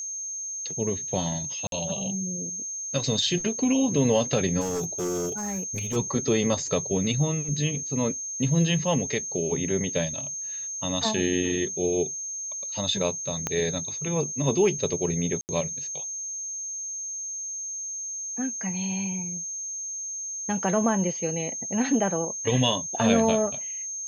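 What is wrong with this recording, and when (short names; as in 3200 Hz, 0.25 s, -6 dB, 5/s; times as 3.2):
tone 6400 Hz -31 dBFS
1.67–1.72 gap 52 ms
4.6–5.97 clipped -25.5 dBFS
13.47 pop -12 dBFS
15.41–15.49 gap 79 ms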